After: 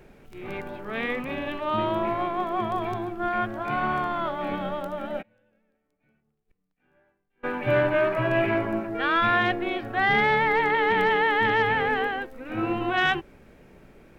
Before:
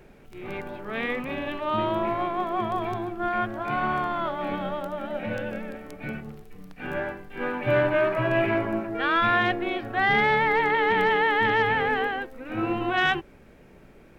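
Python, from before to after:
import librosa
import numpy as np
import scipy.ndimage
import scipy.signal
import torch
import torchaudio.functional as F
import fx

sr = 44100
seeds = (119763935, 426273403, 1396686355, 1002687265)

y = fx.gate_flip(x, sr, shuts_db=-36.0, range_db=-35, at=(5.21, 7.43), fade=0.02)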